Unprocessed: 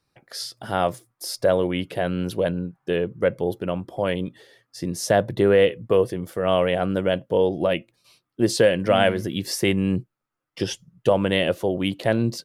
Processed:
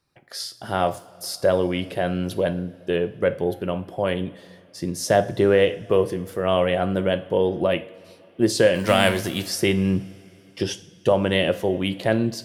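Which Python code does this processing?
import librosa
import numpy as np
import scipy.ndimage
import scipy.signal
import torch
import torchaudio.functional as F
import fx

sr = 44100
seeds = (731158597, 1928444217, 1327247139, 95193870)

y = fx.envelope_flatten(x, sr, power=0.6, at=(8.74, 9.45), fade=0.02)
y = fx.rev_double_slope(y, sr, seeds[0], early_s=0.44, late_s=3.5, knee_db=-19, drr_db=10.0)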